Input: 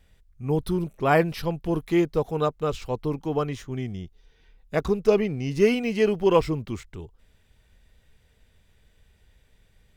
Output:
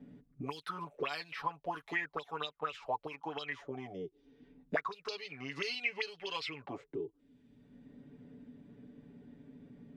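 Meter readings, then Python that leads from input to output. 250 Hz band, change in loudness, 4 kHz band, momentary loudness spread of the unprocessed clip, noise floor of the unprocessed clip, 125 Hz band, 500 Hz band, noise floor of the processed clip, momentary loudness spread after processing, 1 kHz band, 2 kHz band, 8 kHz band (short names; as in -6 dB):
-20.0 dB, -14.5 dB, -3.0 dB, 14 LU, -62 dBFS, -22.5 dB, -19.0 dB, -72 dBFS, 19 LU, -9.5 dB, -5.0 dB, n/a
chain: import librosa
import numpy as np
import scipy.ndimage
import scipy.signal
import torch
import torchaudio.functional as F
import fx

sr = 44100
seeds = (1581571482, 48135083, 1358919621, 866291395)

y = x + 0.83 * np.pad(x, (int(7.0 * sr / 1000.0), 0))[:len(x)]
y = fx.auto_wah(y, sr, base_hz=230.0, top_hz=4200.0, q=8.8, full_db=-15.5, direction='up')
y = fx.band_squash(y, sr, depth_pct=70)
y = y * librosa.db_to_amplitude(8.0)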